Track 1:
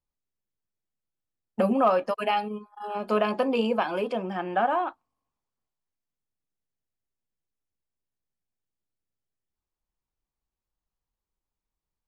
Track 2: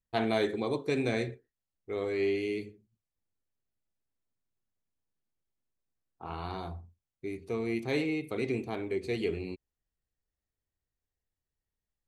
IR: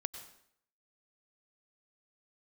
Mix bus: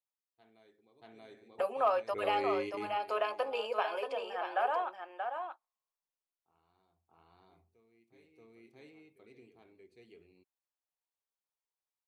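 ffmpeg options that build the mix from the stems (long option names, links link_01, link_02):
-filter_complex "[0:a]highpass=frequency=460:width=0.5412,highpass=frequency=460:width=1.3066,volume=-6.5dB,asplit=3[link_01][link_02][link_03];[link_02]volume=-6.5dB[link_04];[1:a]adelay=250,volume=-4.5dB,asplit=2[link_05][link_06];[link_06]volume=-21dB[link_07];[link_03]apad=whole_len=543396[link_08];[link_05][link_08]sidechaingate=range=-31dB:threshold=-60dB:ratio=16:detection=peak[link_09];[link_04][link_07]amix=inputs=2:normalize=0,aecho=0:1:631:1[link_10];[link_01][link_09][link_10]amix=inputs=3:normalize=0,lowshelf=frequency=140:gain=-8"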